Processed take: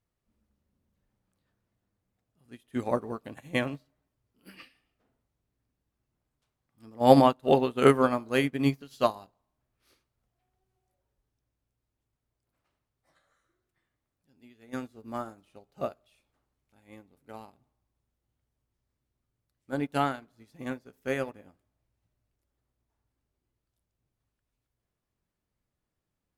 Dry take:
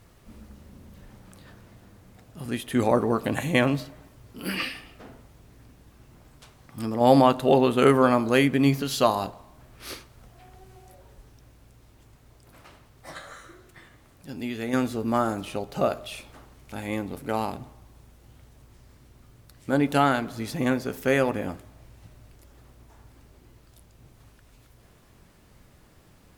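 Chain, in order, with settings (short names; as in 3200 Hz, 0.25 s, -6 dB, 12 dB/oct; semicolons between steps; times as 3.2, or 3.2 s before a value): upward expander 2.5:1, over -34 dBFS; gain +2 dB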